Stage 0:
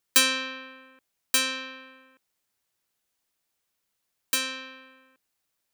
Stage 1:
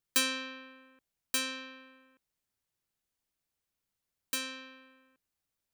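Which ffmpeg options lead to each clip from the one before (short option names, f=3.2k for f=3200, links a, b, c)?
-af "lowshelf=f=210:g=11,volume=-8.5dB"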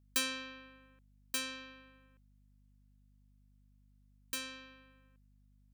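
-af "aeval=exprs='val(0)+0.001*(sin(2*PI*50*n/s)+sin(2*PI*2*50*n/s)/2+sin(2*PI*3*50*n/s)/3+sin(2*PI*4*50*n/s)/4+sin(2*PI*5*50*n/s)/5)':c=same,volume=-5dB"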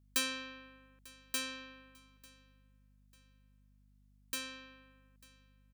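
-af "aecho=1:1:895|1790:0.0708|0.0262"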